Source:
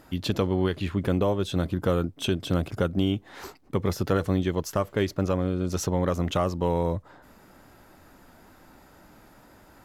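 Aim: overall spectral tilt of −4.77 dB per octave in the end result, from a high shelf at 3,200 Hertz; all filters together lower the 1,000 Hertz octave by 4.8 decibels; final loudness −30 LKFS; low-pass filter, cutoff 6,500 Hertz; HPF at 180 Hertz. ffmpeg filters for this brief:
ffmpeg -i in.wav -af "highpass=180,lowpass=6500,equalizer=frequency=1000:width_type=o:gain=-7.5,highshelf=frequency=3200:gain=8.5,volume=-1dB" out.wav

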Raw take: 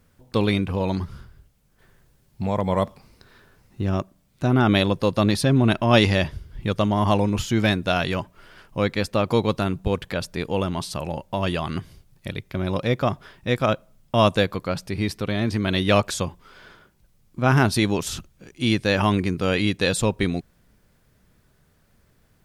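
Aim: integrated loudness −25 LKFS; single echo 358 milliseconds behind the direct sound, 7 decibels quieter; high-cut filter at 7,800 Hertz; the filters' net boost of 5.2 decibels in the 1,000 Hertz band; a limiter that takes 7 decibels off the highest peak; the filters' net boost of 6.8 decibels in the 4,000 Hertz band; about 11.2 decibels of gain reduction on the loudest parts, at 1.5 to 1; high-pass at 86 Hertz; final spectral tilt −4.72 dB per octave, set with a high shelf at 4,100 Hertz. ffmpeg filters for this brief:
ffmpeg -i in.wav -af "highpass=86,lowpass=7800,equalizer=frequency=1000:width_type=o:gain=6,equalizer=frequency=4000:width_type=o:gain=5.5,highshelf=frequency=4100:gain=5,acompressor=threshold=-41dB:ratio=1.5,alimiter=limit=-17dB:level=0:latency=1,aecho=1:1:358:0.447,volume=6dB" out.wav

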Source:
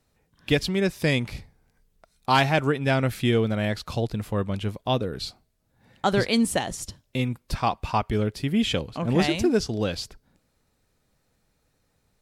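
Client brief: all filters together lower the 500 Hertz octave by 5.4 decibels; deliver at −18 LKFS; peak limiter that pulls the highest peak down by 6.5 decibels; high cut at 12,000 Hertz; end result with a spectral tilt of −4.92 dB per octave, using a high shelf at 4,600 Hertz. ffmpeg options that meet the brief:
ffmpeg -i in.wav -af "lowpass=12000,equalizer=frequency=500:width_type=o:gain=-7,highshelf=frequency=4600:gain=-4,volume=10.5dB,alimiter=limit=-5dB:level=0:latency=1" out.wav

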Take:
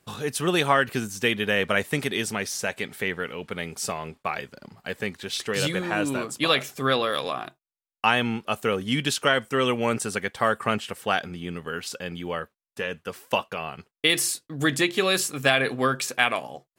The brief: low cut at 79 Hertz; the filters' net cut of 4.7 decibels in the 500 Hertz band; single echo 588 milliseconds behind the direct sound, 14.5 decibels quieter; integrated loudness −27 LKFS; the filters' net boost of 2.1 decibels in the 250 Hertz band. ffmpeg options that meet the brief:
ffmpeg -i in.wav -af "highpass=79,equalizer=frequency=250:width_type=o:gain=5,equalizer=frequency=500:width_type=o:gain=-7.5,aecho=1:1:588:0.188,volume=-1dB" out.wav

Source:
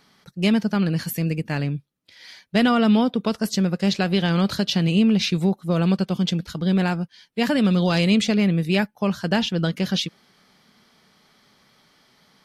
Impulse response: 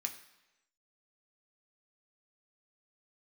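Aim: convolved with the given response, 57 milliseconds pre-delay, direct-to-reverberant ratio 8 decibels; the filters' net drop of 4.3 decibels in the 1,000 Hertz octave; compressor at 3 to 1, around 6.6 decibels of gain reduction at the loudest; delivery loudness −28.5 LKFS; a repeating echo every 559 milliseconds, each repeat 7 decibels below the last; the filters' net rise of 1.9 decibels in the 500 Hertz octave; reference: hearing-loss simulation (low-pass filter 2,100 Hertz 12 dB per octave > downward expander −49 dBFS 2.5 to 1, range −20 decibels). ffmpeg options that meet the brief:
-filter_complex "[0:a]equalizer=frequency=500:width_type=o:gain=4.5,equalizer=frequency=1000:width_type=o:gain=-8.5,acompressor=threshold=-23dB:ratio=3,aecho=1:1:559|1118|1677|2236|2795:0.447|0.201|0.0905|0.0407|0.0183,asplit=2[link_01][link_02];[1:a]atrim=start_sample=2205,adelay=57[link_03];[link_02][link_03]afir=irnorm=-1:irlink=0,volume=-7.5dB[link_04];[link_01][link_04]amix=inputs=2:normalize=0,lowpass=2100,agate=range=-20dB:threshold=-49dB:ratio=2.5,volume=-2.5dB"

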